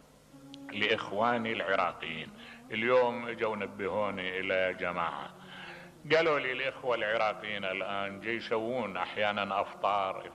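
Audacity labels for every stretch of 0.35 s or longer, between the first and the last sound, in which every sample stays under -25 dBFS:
2.120000	2.730000	silence
5.140000	6.110000	silence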